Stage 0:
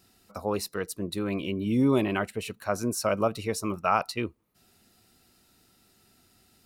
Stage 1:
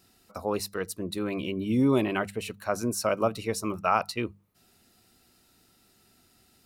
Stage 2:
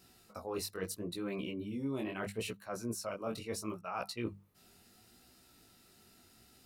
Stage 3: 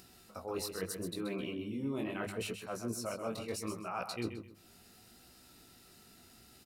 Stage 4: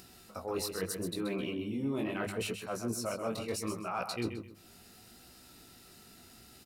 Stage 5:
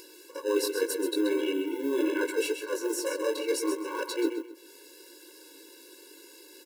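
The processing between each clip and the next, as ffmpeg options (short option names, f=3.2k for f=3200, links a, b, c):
-af "bandreject=f=50:t=h:w=6,bandreject=f=100:t=h:w=6,bandreject=f=150:t=h:w=6,bandreject=f=200:t=h:w=6"
-af "areverse,acompressor=threshold=-35dB:ratio=12,areverse,flanger=delay=15.5:depth=7.1:speed=0.75,volume=3dB"
-af "acompressor=mode=upward:threshold=-54dB:ratio=2.5,aecho=1:1:130|260|390:0.398|0.0995|0.0249"
-af "asoftclip=type=tanh:threshold=-25dB,volume=3.5dB"
-filter_complex "[0:a]asplit=2[a][b];[b]acrusher=samples=39:mix=1:aa=0.000001,volume=-6dB[c];[a][c]amix=inputs=2:normalize=0,afftfilt=real='re*eq(mod(floor(b*sr/1024/290),2),1)':imag='im*eq(mod(floor(b*sr/1024/290),2),1)':win_size=1024:overlap=0.75,volume=8dB"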